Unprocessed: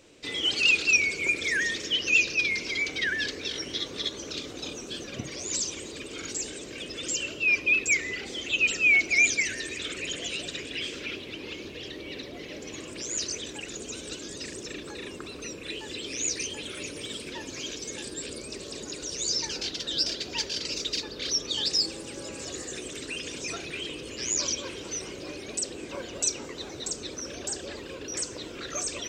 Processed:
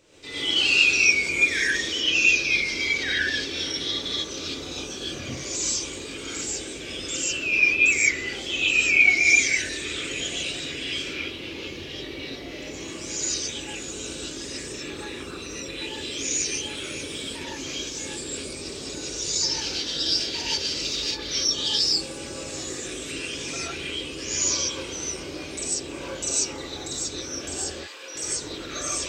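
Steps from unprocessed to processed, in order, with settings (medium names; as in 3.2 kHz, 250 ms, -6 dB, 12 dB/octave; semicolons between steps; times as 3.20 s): 27.71–28.14 s: high-pass 1.2 kHz -> 520 Hz 12 dB/octave; gated-style reverb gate 170 ms rising, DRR -8 dB; trim -4.5 dB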